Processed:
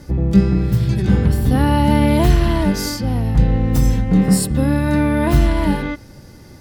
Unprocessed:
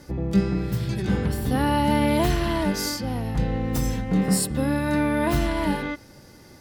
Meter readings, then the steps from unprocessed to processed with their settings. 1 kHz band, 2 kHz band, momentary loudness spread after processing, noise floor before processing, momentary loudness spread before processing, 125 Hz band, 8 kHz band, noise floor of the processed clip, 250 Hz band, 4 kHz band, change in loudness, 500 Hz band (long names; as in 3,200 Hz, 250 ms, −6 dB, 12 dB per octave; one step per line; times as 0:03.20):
+3.5 dB, +3.0 dB, 6 LU, −49 dBFS, 6 LU, +10.0 dB, +3.0 dB, −41 dBFS, +7.0 dB, +3.0 dB, +7.5 dB, +4.5 dB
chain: low-shelf EQ 190 Hz +10 dB
level +3 dB